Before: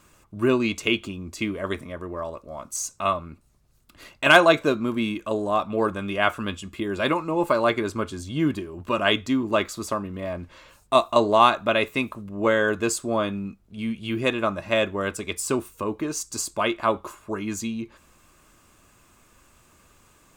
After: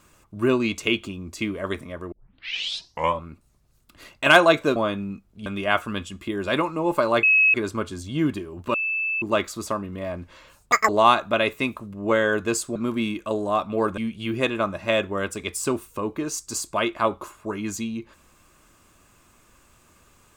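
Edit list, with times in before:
0:02.12: tape start 1.11 s
0:04.76–0:05.98: swap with 0:13.11–0:13.81
0:07.75: insert tone 2,570 Hz −13.5 dBFS 0.31 s
0:08.95–0:09.43: beep over 2,630 Hz −22.5 dBFS
0:10.93–0:11.24: play speed 186%

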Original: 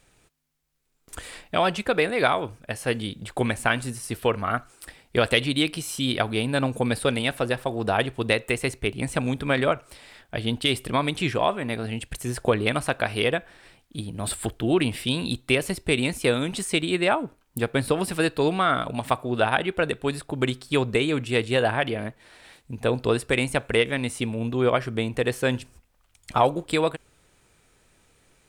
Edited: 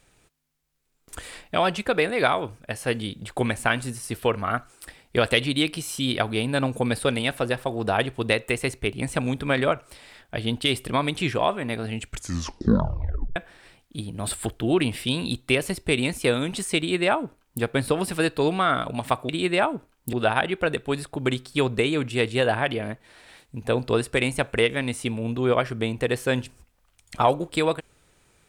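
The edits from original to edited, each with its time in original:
0:11.93: tape stop 1.43 s
0:16.78–0:17.62: duplicate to 0:19.29

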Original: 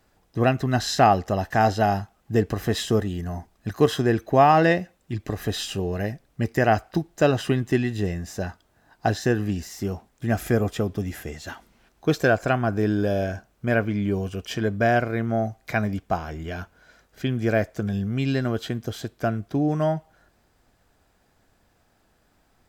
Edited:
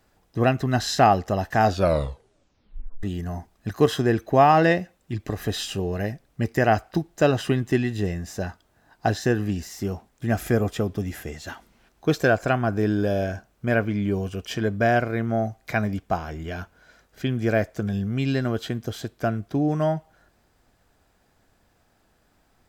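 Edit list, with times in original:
0:01.63: tape stop 1.40 s

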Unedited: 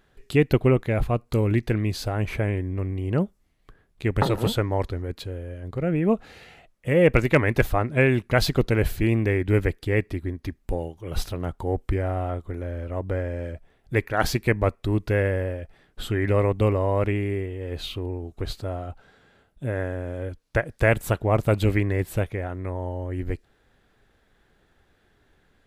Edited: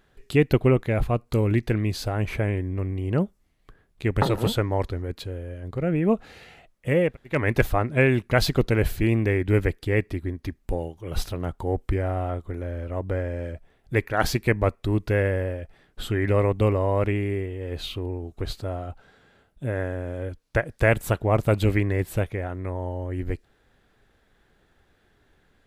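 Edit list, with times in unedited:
0:07.05–0:07.36: fill with room tone, crossfade 0.24 s

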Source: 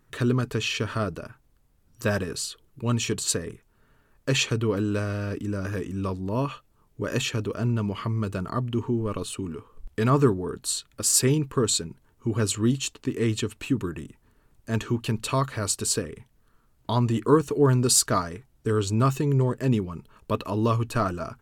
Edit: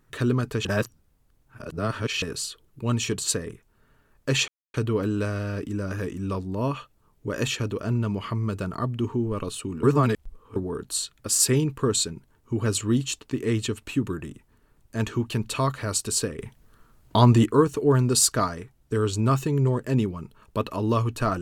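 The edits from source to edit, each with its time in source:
0:00.65–0:02.22: reverse
0:04.48: splice in silence 0.26 s
0:09.57–0:10.30: reverse
0:16.13–0:17.20: clip gain +7 dB

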